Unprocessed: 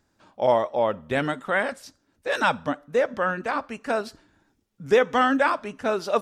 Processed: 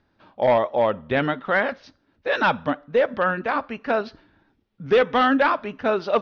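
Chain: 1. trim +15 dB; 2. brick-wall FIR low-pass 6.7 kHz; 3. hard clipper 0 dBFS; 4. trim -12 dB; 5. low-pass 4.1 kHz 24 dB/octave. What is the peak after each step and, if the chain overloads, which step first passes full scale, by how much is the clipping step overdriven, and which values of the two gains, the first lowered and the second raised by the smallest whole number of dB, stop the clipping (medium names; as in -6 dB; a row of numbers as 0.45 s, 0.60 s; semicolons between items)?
+8.0 dBFS, +8.0 dBFS, 0.0 dBFS, -12.0 dBFS, -10.5 dBFS; step 1, 8.0 dB; step 1 +7 dB, step 4 -4 dB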